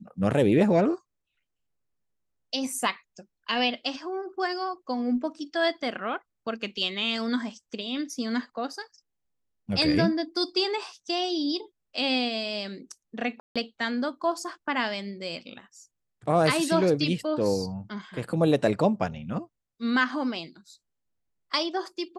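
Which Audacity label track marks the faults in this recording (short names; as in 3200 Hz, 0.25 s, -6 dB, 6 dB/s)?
13.400000	13.560000	gap 0.156 s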